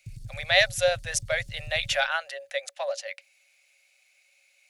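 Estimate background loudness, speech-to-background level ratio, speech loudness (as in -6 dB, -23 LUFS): -44.0 LUFS, 17.5 dB, -26.5 LUFS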